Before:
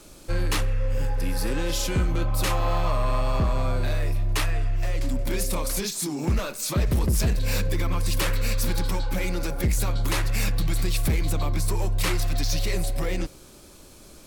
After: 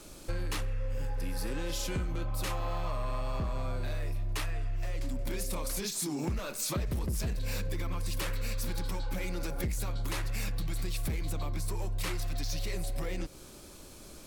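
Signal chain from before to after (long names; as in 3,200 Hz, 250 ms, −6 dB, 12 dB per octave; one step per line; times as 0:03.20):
downward compressor, threshold −29 dBFS, peak gain reduction 9.5 dB
level −1.5 dB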